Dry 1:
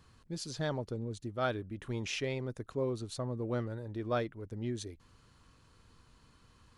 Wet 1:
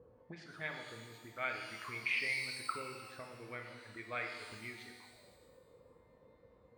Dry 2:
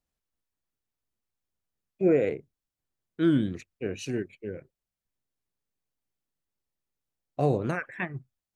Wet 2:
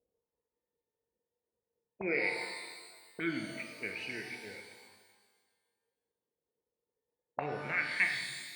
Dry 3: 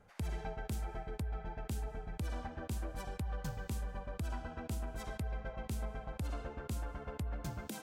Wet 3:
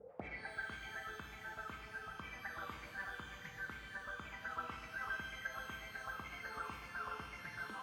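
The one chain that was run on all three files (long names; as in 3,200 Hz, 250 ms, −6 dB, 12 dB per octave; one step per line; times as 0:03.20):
envelope filter 470–2,200 Hz, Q 12, up, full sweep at −35.5 dBFS
high-pass filter 53 Hz
reverb reduction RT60 0.93 s
RIAA equalisation playback
reverb with rising layers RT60 1.5 s, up +12 semitones, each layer −8 dB, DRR 2.5 dB
level +18 dB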